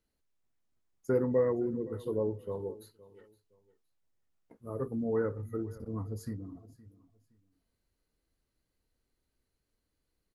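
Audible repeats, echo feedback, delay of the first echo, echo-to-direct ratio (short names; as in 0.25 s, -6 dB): 2, 26%, 0.516 s, -19.5 dB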